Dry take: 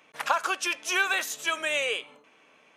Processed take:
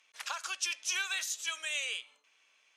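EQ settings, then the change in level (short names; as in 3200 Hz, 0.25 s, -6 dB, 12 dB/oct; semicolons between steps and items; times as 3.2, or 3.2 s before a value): band-pass 5800 Hz, Q 1; 0.0 dB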